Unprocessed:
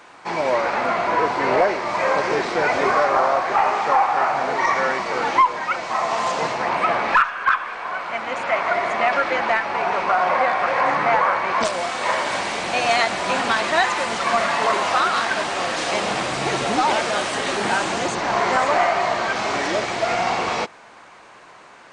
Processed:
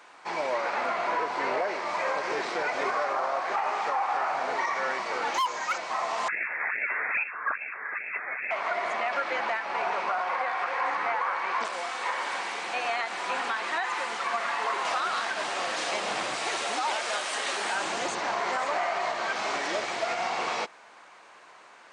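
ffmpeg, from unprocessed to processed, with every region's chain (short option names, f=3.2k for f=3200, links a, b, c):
-filter_complex "[0:a]asettb=1/sr,asplit=3[a][b][c];[a]atrim=end=5.344[d];[b]atrim=start=5.34:end=5.78,asetpts=PTS-STARTPTS,afade=t=in:d=0.004:c=qsin,afade=t=out:st=0.436:d=0.004:c=qsin,lowpass=f=6.8k:t=q:w=4.8,asoftclip=type=hard:threshold=-16dB[e];[c]atrim=start=5.776[f];[d][e]acrossfade=d=0.004:c1=hsin:c2=qsin[g];[g][f]acrossfade=d=0.004:c1=qsin:c2=hsin,asettb=1/sr,asplit=3[h][i][j];[h]atrim=end=6.284[k];[i]atrim=start=6.28:end=8.51,asetpts=PTS-STARTPTS,afade=t=in:d=0.004:c=qsin,afade=t=out:st=2.226:d=0.004:c=qsin,highpass=f=390:p=1,acrusher=samples=16:mix=1:aa=0.000001:lfo=1:lforange=25.6:lforate=2.4,lowpass=f=2.3k:t=q:w=0.5098,lowpass=f=2.3k:t=q:w=0.6013,lowpass=f=2.3k:t=q:w=0.9,lowpass=f=2.3k:t=q:w=2.563,afreqshift=-2700[l];[j]atrim=start=8.506[m];[k][l]acrossfade=d=0.004:c1=hsin:c2=qsin[n];[n][m]acrossfade=d=0.004:c1=qsin:c2=hsin,asettb=1/sr,asplit=3[o][p][q];[o]atrim=end=10.224[r];[p]atrim=start=10.22:end=14.85,asetpts=PTS-STARTPTS,afade=t=in:d=0.004:c=qsin,afade=t=out:st=4.626:d=0.004:c=qsin,acrossover=split=2600[s][t];[t]acompressor=threshold=-34dB:ratio=4:attack=1:release=60[u];[s][u]amix=inputs=2:normalize=0,highpass=f=330:p=1,bandreject=f=620:w=5.2[v];[q]atrim=start=14.846[w];[r][v]acrossfade=d=0.004:c1=hsin:c2=qsin[x];[x][w]acrossfade=d=0.004:c1=qsin:c2=hsin,asettb=1/sr,asplit=3[y][z][aa];[y]atrim=end=16.364[ab];[z]atrim=start=16.36:end=17.75,asetpts=PTS-STARTPTS,afade=t=in:d=0.004:c=qsin,afade=t=out:st=1.386:d=0.004:c=qsin,lowpass=f=2.4k:p=1,aemphasis=mode=production:type=riaa[ac];[aa]atrim=start=17.746[ad];[ab][ac]acrossfade=d=0.004:c1=hsin:c2=qsin[ae];[ae][ad]acrossfade=d=0.004:c1=qsin:c2=hsin,highpass=f=480:p=1,alimiter=limit=-13.5dB:level=0:latency=1:release=136,volume=-5.5dB"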